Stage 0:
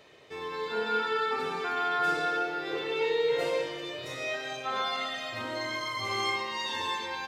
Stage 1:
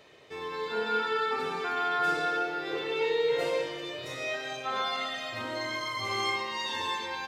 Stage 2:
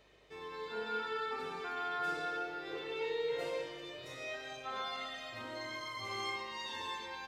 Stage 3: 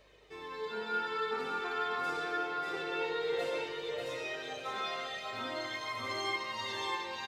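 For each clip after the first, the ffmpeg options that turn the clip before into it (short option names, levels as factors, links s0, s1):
-af anull
-af "aeval=exprs='val(0)+0.000708*(sin(2*PI*50*n/s)+sin(2*PI*2*50*n/s)/2+sin(2*PI*3*50*n/s)/3+sin(2*PI*4*50*n/s)/4+sin(2*PI*5*50*n/s)/5)':c=same,volume=0.355"
-af "flanger=delay=1.8:depth=3.8:regen=51:speed=0.5:shape=sinusoidal,aecho=1:1:591|1182|1773|2364:0.596|0.185|0.0572|0.0177,volume=2.11"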